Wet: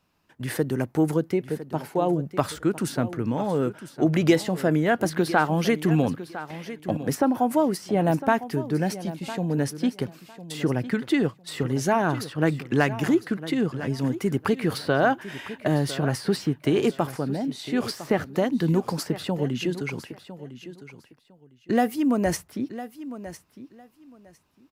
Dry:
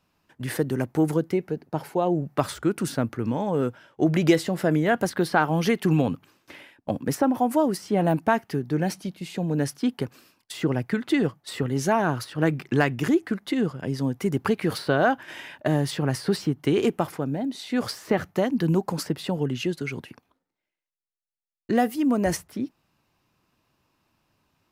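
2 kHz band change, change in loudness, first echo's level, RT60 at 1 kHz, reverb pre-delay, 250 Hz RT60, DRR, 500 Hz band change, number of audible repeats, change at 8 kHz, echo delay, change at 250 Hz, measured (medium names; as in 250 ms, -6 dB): 0.0 dB, 0.0 dB, -14.0 dB, no reverb, no reverb, no reverb, no reverb, 0.0 dB, 2, 0.0 dB, 1005 ms, 0.0 dB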